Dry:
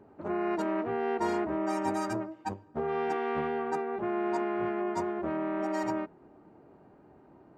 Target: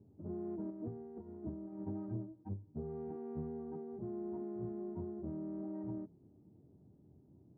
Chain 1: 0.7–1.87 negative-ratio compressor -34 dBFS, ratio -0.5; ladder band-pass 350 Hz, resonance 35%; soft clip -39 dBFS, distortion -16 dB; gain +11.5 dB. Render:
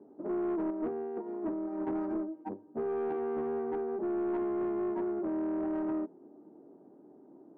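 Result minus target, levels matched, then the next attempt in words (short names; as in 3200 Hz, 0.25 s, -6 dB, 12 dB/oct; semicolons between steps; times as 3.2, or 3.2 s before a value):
125 Hz band -18.0 dB
0.7–1.87 negative-ratio compressor -34 dBFS, ratio -0.5; ladder band-pass 110 Hz, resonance 35%; soft clip -39 dBFS, distortion -31 dB; gain +11.5 dB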